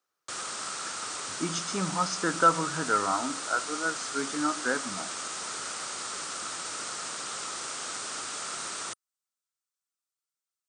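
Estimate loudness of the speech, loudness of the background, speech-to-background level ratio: -29.0 LUFS, -34.0 LUFS, 5.0 dB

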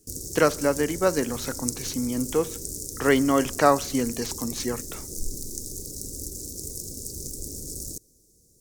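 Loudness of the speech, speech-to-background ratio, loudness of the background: -25.0 LUFS, 9.0 dB, -34.0 LUFS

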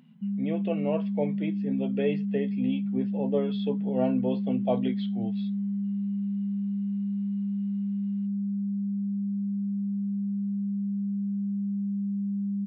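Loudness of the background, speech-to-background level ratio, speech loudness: -30.5 LUFS, -1.0 dB, -31.5 LUFS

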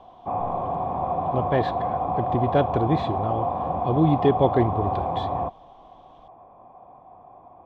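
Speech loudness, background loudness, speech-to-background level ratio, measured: -25.0 LUFS, -26.5 LUFS, 1.5 dB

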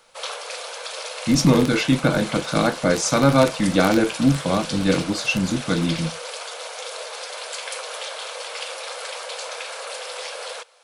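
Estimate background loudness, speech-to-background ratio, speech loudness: -31.0 LUFS, 11.0 dB, -20.0 LUFS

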